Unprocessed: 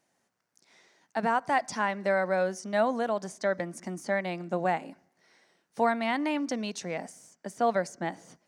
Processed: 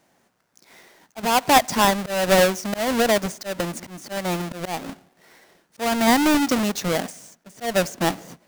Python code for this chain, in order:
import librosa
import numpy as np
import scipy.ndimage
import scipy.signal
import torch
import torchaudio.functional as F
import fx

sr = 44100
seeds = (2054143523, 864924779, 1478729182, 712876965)

y = fx.halfwave_hold(x, sr)
y = fx.auto_swell(y, sr, attack_ms=268.0)
y = F.gain(torch.from_numpy(y), 7.0).numpy()